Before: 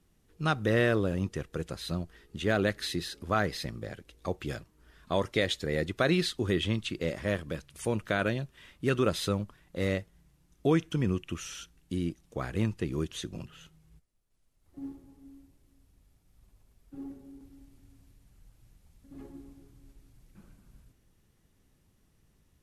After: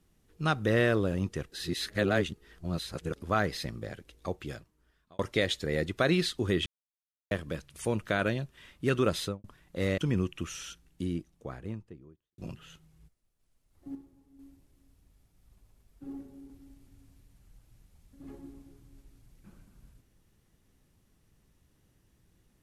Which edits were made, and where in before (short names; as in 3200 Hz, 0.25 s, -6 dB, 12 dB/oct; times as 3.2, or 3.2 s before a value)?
1.52–3.16 reverse
4.11–5.19 fade out
6.66–7.31 mute
9.19–9.44 studio fade out
9.98–10.89 cut
11.6–13.29 studio fade out
14.86–15.3 gain -7 dB